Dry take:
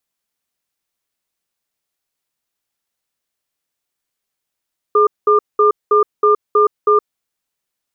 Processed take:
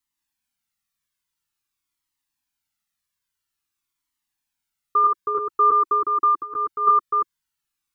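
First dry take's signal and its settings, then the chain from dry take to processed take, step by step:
tone pair in a cadence 421 Hz, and 1,200 Hz, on 0.12 s, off 0.20 s, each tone −11 dBFS 2.16 s
delay that plays each chunk backwards 168 ms, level −2.5 dB
flat-topped bell 530 Hz −12.5 dB 1.1 octaves
flanger whose copies keep moving one way falling 0.49 Hz

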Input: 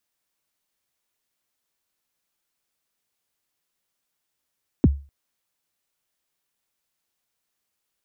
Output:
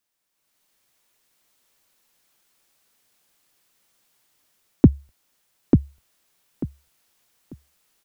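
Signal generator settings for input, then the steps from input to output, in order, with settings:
synth kick length 0.25 s, from 360 Hz, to 70 Hz, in 32 ms, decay 0.33 s, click off, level −8 dB
parametric band 71 Hz −8 dB 0.46 octaves
automatic gain control gain up to 11 dB
on a send: repeating echo 892 ms, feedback 22%, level −3.5 dB

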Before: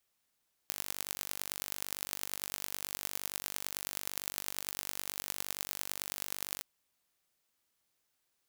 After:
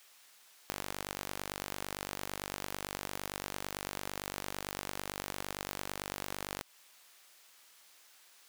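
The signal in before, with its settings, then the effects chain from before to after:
impulse train 48.9 per second, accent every 5, −7 dBFS 5.92 s
low-shelf EQ 390 Hz −6.5 dB
downward compressor, threshold −39 dBFS
mid-hump overdrive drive 28 dB, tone 7,300 Hz, clips at −13.5 dBFS

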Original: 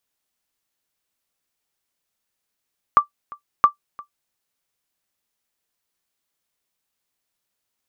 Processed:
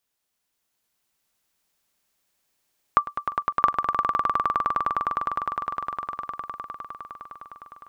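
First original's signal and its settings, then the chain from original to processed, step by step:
ping with an echo 1,170 Hz, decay 0.11 s, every 0.67 s, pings 2, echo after 0.35 s, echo −23.5 dB −3 dBFS
downward compressor 2 to 1, threshold −18 dBFS
on a send: echo that builds up and dies away 102 ms, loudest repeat 8, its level −6 dB

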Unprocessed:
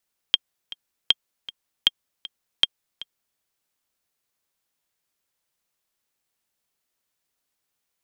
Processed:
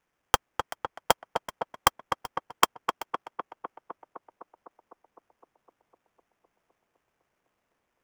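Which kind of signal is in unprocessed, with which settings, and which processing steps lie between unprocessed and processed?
click track 157 BPM, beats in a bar 2, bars 4, 3,210 Hz, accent 18.5 dB −2.5 dBFS
sample-rate reduction 4,200 Hz, jitter 20%
on a send: tape delay 254 ms, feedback 83%, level −5 dB, low-pass 1,700 Hz

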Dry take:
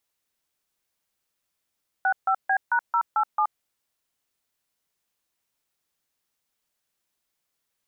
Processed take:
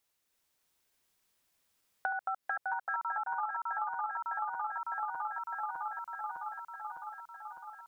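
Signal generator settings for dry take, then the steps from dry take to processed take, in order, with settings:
touch tones "65B#087", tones 75 ms, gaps 147 ms, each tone −21.5 dBFS
feedback delay that plays each chunk backwards 303 ms, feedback 81%, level −2 dB
downward compressor 6 to 1, threshold −33 dBFS

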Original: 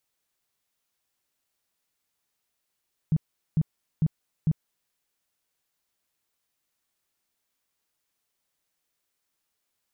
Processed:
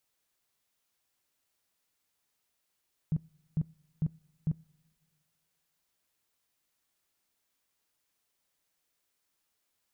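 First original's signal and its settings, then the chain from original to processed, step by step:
tone bursts 157 Hz, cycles 7, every 0.45 s, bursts 4, −18 dBFS
brickwall limiter −24.5 dBFS
coupled-rooms reverb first 0.22 s, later 1.9 s, from −18 dB, DRR 19.5 dB

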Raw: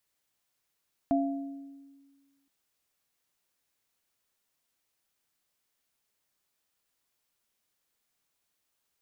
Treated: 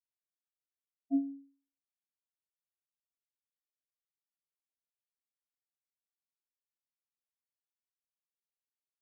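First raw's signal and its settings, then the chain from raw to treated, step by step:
inharmonic partials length 1.37 s, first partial 277 Hz, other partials 685 Hz, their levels −1.5 dB, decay 1.61 s, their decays 0.84 s, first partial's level −23 dB
tuned comb filter 54 Hz, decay 0.31 s, harmonics all, mix 70%
in parallel at −2 dB: brickwall limiter −34.5 dBFS
on the sum: every bin expanded away from the loudest bin 4 to 1

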